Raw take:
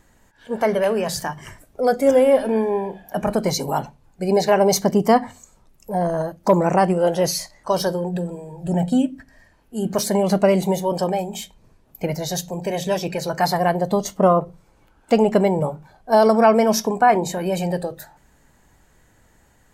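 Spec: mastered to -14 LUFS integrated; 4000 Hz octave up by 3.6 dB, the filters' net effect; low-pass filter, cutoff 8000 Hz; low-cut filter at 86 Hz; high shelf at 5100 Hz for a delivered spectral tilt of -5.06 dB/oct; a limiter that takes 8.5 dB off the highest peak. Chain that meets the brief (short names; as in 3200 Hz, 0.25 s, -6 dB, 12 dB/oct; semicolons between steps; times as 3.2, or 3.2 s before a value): HPF 86 Hz; LPF 8000 Hz; bell 4000 Hz +6.5 dB; high shelf 5100 Hz -3.5 dB; gain +9 dB; limiter -3 dBFS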